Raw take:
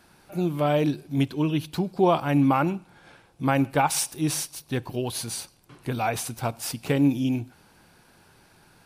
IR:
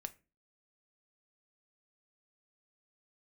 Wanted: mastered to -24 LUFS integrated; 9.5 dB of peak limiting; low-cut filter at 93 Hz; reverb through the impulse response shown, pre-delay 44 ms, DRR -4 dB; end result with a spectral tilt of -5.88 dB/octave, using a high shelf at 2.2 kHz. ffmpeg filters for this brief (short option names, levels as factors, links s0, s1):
-filter_complex "[0:a]highpass=93,highshelf=f=2200:g=-6.5,alimiter=limit=0.119:level=0:latency=1,asplit=2[s0][s1];[1:a]atrim=start_sample=2205,adelay=44[s2];[s1][s2]afir=irnorm=-1:irlink=0,volume=2.24[s3];[s0][s3]amix=inputs=2:normalize=0,volume=1.12"